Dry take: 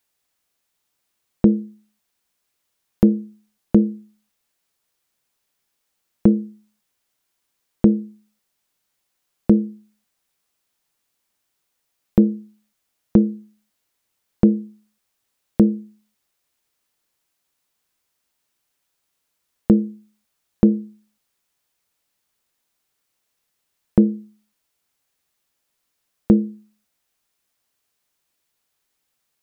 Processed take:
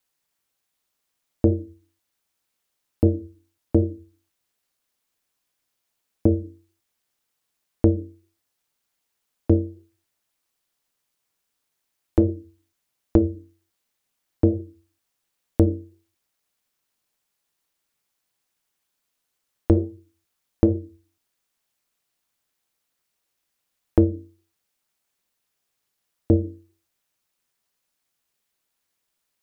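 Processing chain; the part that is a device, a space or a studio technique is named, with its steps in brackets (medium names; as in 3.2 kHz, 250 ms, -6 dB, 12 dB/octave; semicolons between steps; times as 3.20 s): alien voice (ring modulator 120 Hz; flange 1.3 Hz, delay 3.9 ms, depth 5.4 ms, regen -82%); trim +4.5 dB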